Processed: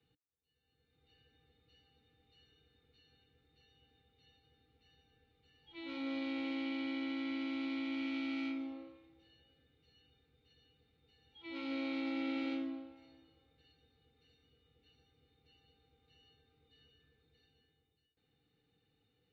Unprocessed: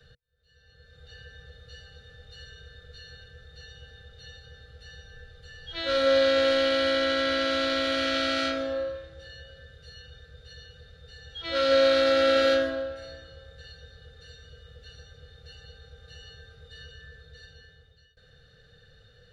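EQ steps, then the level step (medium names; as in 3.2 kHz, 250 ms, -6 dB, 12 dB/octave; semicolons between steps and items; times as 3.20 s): vowel filter u; +1.5 dB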